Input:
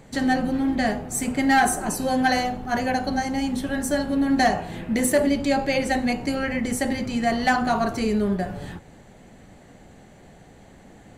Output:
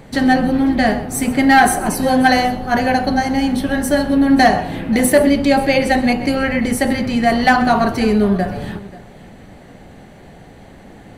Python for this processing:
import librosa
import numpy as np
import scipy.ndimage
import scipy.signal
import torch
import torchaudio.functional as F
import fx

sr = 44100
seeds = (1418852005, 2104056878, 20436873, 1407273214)

y = fx.peak_eq(x, sr, hz=7100.0, db=-9.0, octaves=0.46)
y = fx.echo_multitap(y, sr, ms=(128, 534), db=(-17.0, -19.5))
y = F.gain(torch.from_numpy(y), 8.0).numpy()